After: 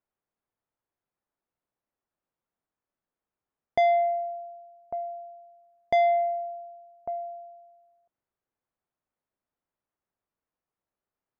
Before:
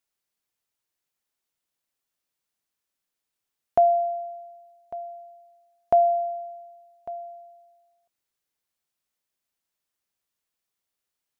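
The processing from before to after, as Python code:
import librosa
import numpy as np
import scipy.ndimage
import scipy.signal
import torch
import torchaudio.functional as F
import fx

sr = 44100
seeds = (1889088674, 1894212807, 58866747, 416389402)

y = scipy.signal.sosfilt(scipy.signal.butter(2, 1200.0, 'lowpass', fs=sr, output='sos'), x)
y = 10.0 ** (-21.0 / 20.0) * np.tanh(y / 10.0 ** (-21.0 / 20.0))
y = y * librosa.db_to_amplitude(3.0)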